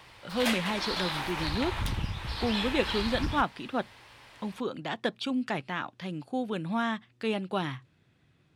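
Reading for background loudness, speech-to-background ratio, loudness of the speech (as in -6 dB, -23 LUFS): -33.0 LUFS, 0.5 dB, -32.5 LUFS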